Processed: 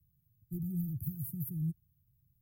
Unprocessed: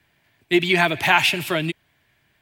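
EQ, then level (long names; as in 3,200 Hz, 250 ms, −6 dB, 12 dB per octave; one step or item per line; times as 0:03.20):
inverse Chebyshev band-stop filter 590–4,500 Hz, stop band 70 dB
0.0 dB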